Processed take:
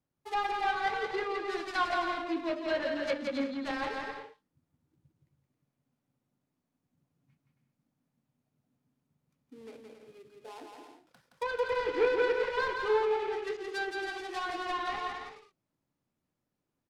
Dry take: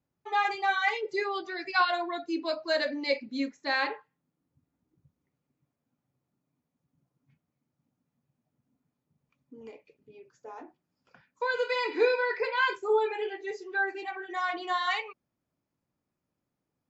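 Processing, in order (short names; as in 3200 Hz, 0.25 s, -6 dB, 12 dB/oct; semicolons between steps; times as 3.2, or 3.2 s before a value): switching dead time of 0.18 ms; treble ducked by the level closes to 2400 Hz, closed at -27.5 dBFS; on a send: bouncing-ball echo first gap 0.17 s, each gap 0.6×, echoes 5; on the sum: gain -2.5 dB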